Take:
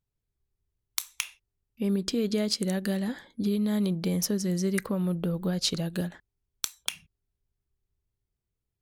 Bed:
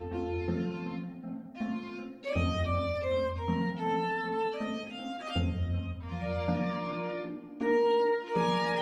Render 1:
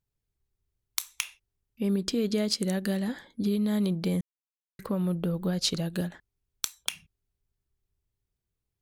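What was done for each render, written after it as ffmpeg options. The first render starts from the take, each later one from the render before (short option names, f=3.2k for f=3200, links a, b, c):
-filter_complex "[0:a]asplit=3[a][b][c];[a]atrim=end=4.21,asetpts=PTS-STARTPTS,afade=t=out:st=4.206:d=0.004:c=hsin[d];[b]atrim=start=4.21:end=4.79,asetpts=PTS-STARTPTS,volume=0[e];[c]atrim=start=4.79,asetpts=PTS-STARTPTS,afade=t=in:d=0.004:c=hsin[f];[d][e][f]concat=n=3:v=0:a=1"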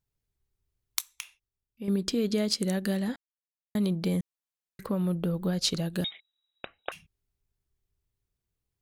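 -filter_complex "[0:a]asettb=1/sr,asplit=3[a][b][c];[a]atrim=end=6.044[d];[b]atrim=start=6.04:end=6.92,asetpts=PTS-STARTPTS,afade=t=in:d=0.004:c=qsin,afade=t=out:st=0.876:d=0.004:c=qsin,lowpass=f=3.3k:t=q:w=0.5098,lowpass=f=3.3k:t=q:w=0.6013,lowpass=f=3.3k:t=q:w=0.9,lowpass=f=3.3k:t=q:w=2.563,afreqshift=-3900[e];[c]atrim=start=6.916[f];[d][e]acrossfade=d=0.004:c1=hsin:c2=qsin[g];[g][f]acrossfade=d=0.004:c1=qsin:c2=hsin,asplit=5[h][i][j][k][l];[h]atrim=end=1.012[m];[i]atrim=start=1.008:end=1.882,asetpts=PTS-STARTPTS,volume=-8.5dB[n];[j]atrim=start=1.878:end=3.16,asetpts=PTS-STARTPTS,afade=t=out:st=1.278:d=0.004:c=hsin[o];[k]atrim=start=3.16:end=3.75,asetpts=PTS-STARTPTS,volume=0[p];[l]atrim=start=3.75,asetpts=PTS-STARTPTS,afade=t=in:d=0.004:c=hsin[q];[m][n]acrossfade=d=0.004:c1=hsin:c2=hsin[r];[o][p][q]concat=n=3:v=0:a=1[s];[r][s]acrossfade=d=0.004:c1=hsin:c2=hsin"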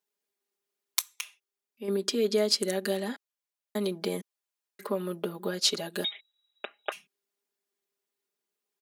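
-af "highpass=f=290:w=0.5412,highpass=f=290:w=1.3066,aecho=1:1:4.9:1"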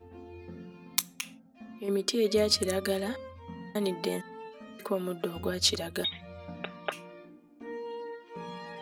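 -filter_complex "[1:a]volume=-13dB[a];[0:a][a]amix=inputs=2:normalize=0"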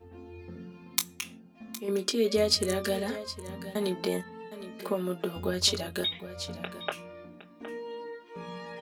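-filter_complex "[0:a]asplit=2[a][b];[b]adelay=22,volume=-9dB[c];[a][c]amix=inputs=2:normalize=0,aecho=1:1:763:0.2"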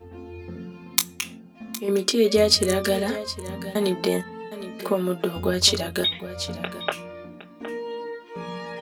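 -af "volume=7dB"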